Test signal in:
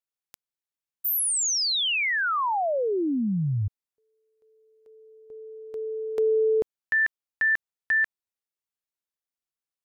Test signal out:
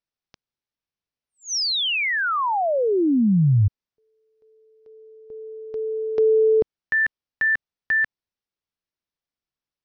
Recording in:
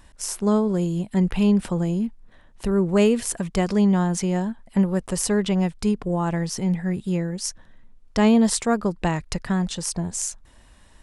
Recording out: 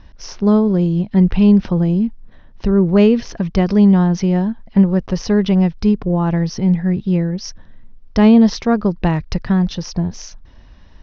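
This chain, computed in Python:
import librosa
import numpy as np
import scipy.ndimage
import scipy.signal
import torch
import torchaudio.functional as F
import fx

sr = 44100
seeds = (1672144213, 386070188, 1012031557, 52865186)

y = scipy.signal.sosfilt(scipy.signal.butter(16, 6000.0, 'lowpass', fs=sr, output='sos'), x)
y = fx.low_shelf(y, sr, hz=350.0, db=8.0)
y = y * 10.0 ** (2.0 / 20.0)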